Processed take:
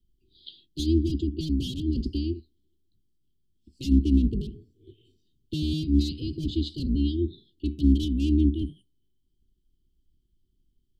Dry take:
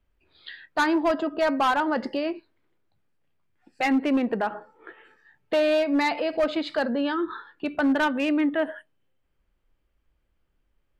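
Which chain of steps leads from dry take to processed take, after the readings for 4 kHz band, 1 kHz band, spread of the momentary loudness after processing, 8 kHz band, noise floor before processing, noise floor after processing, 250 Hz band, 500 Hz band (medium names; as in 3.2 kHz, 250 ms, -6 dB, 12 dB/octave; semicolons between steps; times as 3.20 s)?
-2.0 dB, under -40 dB, 12 LU, no reading, -71 dBFS, -71 dBFS, 0.0 dB, -12.5 dB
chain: octave divider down 2 oct, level +3 dB; Chebyshev band-stop 390–3100 Hz, order 5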